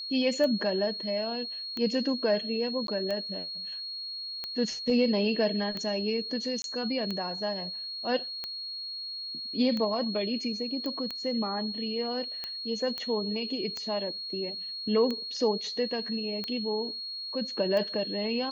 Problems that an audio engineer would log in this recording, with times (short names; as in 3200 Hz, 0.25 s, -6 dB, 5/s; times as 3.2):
tick 45 rpm -20 dBFS
tone 4300 Hz -35 dBFS
2.87–2.88 gap 12 ms
6.62–6.64 gap 22 ms
10.86 pop -22 dBFS
12.98 pop -20 dBFS